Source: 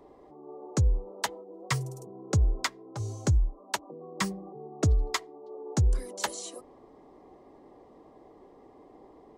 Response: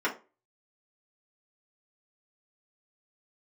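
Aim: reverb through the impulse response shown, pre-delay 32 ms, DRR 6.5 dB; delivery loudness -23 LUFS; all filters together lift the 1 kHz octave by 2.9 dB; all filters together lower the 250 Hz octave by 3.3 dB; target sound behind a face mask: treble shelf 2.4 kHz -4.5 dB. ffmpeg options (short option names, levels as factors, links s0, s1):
-filter_complex "[0:a]equalizer=f=250:t=o:g=-5.5,equalizer=f=1000:t=o:g=4.5,asplit=2[s0][s1];[1:a]atrim=start_sample=2205,adelay=32[s2];[s1][s2]afir=irnorm=-1:irlink=0,volume=0.141[s3];[s0][s3]amix=inputs=2:normalize=0,highshelf=f=2400:g=-4.5,volume=2.51"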